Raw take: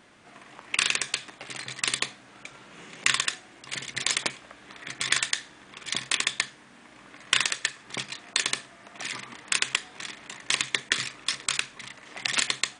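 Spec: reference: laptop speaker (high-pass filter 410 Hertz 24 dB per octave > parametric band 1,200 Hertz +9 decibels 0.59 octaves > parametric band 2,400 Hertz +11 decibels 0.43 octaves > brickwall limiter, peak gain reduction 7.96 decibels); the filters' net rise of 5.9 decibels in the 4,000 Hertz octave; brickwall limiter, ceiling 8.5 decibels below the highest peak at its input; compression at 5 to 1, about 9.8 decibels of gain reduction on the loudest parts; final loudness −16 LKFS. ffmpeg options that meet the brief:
ffmpeg -i in.wav -af "equalizer=frequency=4000:width_type=o:gain=4.5,acompressor=threshold=-29dB:ratio=5,alimiter=limit=-17dB:level=0:latency=1,highpass=frequency=410:width=0.5412,highpass=frequency=410:width=1.3066,equalizer=frequency=1200:width_type=o:width=0.59:gain=9,equalizer=frequency=2400:width_type=o:width=0.43:gain=11,volume=18dB,alimiter=limit=0dB:level=0:latency=1" out.wav

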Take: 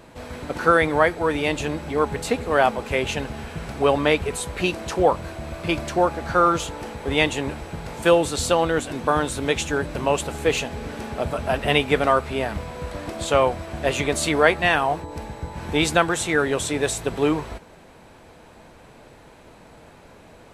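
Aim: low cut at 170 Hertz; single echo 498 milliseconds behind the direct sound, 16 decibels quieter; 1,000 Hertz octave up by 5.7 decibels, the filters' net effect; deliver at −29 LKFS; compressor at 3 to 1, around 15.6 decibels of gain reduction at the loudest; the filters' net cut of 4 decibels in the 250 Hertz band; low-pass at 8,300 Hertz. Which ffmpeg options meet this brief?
ffmpeg -i in.wav -af "highpass=170,lowpass=8300,equalizer=frequency=250:width_type=o:gain=-5.5,equalizer=frequency=1000:width_type=o:gain=8,acompressor=threshold=-31dB:ratio=3,aecho=1:1:498:0.158,volume=3dB" out.wav

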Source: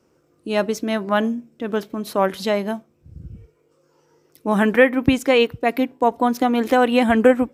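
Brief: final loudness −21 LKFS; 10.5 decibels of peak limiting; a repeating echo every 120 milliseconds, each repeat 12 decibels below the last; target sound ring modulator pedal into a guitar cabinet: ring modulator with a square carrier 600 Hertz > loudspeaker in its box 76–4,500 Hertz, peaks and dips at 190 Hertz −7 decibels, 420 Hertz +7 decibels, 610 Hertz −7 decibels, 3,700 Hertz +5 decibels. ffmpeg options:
ffmpeg -i in.wav -af "alimiter=limit=-12dB:level=0:latency=1,aecho=1:1:120|240|360:0.251|0.0628|0.0157,aeval=exprs='val(0)*sgn(sin(2*PI*600*n/s))':channel_layout=same,highpass=76,equalizer=frequency=190:width_type=q:width=4:gain=-7,equalizer=frequency=420:width_type=q:width=4:gain=7,equalizer=frequency=610:width_type=q:width=4:gain=-7,equalizer=frequency=3700:width_type=q:width=4:gain=5,lowpass=frequency=4500:width=0.5412,lowpass=frequency=4500:width=1.3066,volume=1dB" out.wav

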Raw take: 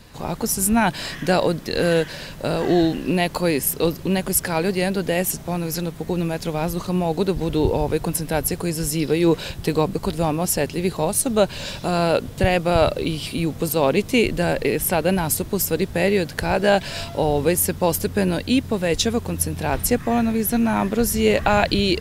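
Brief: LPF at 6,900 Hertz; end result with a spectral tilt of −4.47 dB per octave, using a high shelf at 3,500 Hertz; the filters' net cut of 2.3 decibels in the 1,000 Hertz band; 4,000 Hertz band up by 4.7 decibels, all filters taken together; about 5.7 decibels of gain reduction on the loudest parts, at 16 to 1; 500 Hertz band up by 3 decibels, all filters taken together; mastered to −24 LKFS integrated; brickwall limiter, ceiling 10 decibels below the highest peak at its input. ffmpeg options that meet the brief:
ffmpeg -i in.wav -af "lowpass=6900,equalizer=frequency=500:width_type=o:gain=5,equalizer=frequency=1000:width_type=o:gain=-6.5,highshelf=frequency=3500:gain=4.5,equalizer=frequency=4000:width_type=o:gain=3.5,acompressor=threshold=-16dB:ratio=16,alimiter=limit=-13dB:level=0:latency=1" out.wav

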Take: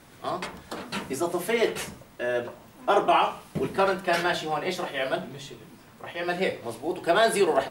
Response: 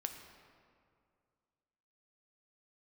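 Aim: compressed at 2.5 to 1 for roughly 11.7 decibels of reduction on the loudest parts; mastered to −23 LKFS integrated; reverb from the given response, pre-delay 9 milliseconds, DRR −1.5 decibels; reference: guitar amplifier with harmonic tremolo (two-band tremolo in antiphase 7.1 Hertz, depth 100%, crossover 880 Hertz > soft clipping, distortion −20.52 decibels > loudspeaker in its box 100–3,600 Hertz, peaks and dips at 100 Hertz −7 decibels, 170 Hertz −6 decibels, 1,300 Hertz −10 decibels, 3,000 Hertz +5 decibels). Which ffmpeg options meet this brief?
-filter_complex "[0:a]acompressor=threshold=-35dB:ratio=2.5,asplit=2[link_01][link_02];[1:a]atrim=start_sample=2205,adelay=9[link_03];[link_02][link_03]afir=irnorm=-1:irlink=0,volume=2.5dB[link_04];[link_01][link_04]amix=inputs=2:normalize=0,acrossover=split=880[link_05][link_06];[link_05]aeval=exprs='val(0)*(1-1/2+1/2*cos(2*PI*7.1*n/s))':channel_layout=same[link_07];[link_06]aeval=exprs='val(0)*(1-1/2-1/2*cos(2*PI*7.1*n/s))':channel_layout=same[link_08];[link_07][link_08]amix=inputs=2:normalize=0,asoftclip=threshold=-24dB,highpass=100,equalizer=frequency=100:width_type=q:width=4:gain=-7,equalizer=frequency=170:width_type=q:width=4:gain=-6,equalizer=frequency=1300:width_type=q:width=4:gain=-10,equalizer=frequency=3000:width_type=q:width=4:gain=5,lowpass=frequency=3600:width=0.5412,lowpass=frequency=3600:width=1.3066,volume=16dB"

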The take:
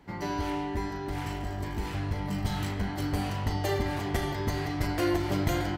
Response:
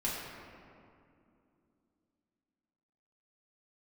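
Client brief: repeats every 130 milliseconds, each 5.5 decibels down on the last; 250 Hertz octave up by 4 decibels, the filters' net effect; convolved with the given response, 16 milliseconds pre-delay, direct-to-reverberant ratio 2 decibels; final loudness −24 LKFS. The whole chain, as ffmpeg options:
-filter_complex "[0:a]equalizer=frequency=250:width_type=o:gain=5.5,aecho=1:1:130|260|390|520|650|780|910:0.531|0.281|0.149|0.079|0.0419|0.0222|0.0118,asplit=2[link_01][link_02];[1:a]atrim=start_sample=2205,adelay=16[link_03];[link_02][link_03]afir=irnorm=-1:irlink=0,volume=-7.5dB[link_04];[link_01][link_04]amix=inputs=2:normalize=0,volume=1dB"

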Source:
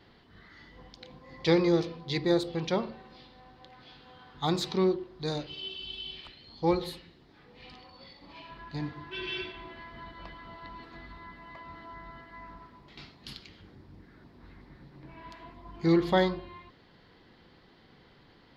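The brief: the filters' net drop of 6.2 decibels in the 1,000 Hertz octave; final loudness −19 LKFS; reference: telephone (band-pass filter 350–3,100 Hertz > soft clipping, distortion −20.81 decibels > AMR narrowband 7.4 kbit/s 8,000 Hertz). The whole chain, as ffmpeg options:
ffmpeg -i in.wav -af "highpass=350,lowpass=3100,equalizer=frequency=1000:width_type=o:gain=-8,asoftclip=threshold=-19.5dB,volume=17dB" -ar 8000 -c:a libopencore_amrnb -b:a 7400 out.amr

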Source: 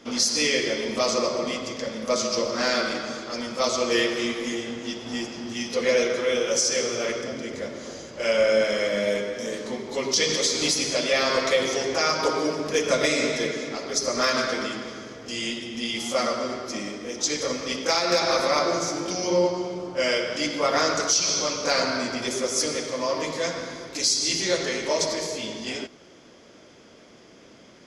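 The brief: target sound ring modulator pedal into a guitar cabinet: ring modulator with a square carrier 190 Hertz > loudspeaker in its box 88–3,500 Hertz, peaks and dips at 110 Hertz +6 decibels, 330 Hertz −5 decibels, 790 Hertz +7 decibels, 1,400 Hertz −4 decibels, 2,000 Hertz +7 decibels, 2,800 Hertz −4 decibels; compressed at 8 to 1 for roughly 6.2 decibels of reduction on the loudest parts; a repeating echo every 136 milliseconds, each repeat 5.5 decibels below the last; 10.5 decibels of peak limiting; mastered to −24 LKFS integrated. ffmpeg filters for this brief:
ffmpeg -i in.wav -af "acompressor=threshold=-23dB:ratio=8,alimiter=limit=-23.5dB:level=0:latency=1,aecho=1:1:136|272|408|544|680|816|952:0.531|0.281|0.149|0.079|0.0419|0.0222|0.0118,aeval=exprs='val(0)*sgn(sin(2*PI*190*n/s))':channel_layout=same,highpass=88,equalizer=frequency=110:width_type=q:width=4:gain=6,equalizer=frequency=330:width_type=q:width=4:gain=-5,equalizer=frequency=790:width_type=q:width=4:gain=7,equalizer=frequency=1400:width_type=q:width=4:gain=-4,equalizer=frequency=2000:width_type=q:width=4:gain=7,equalizer=frequency=2800:width_type=q:width=4:gain=-4,lowpass=frequency=3500:width=0.5412,lowpass=frequency=3500:width=1.3066,volume=6.5dB" out.wav

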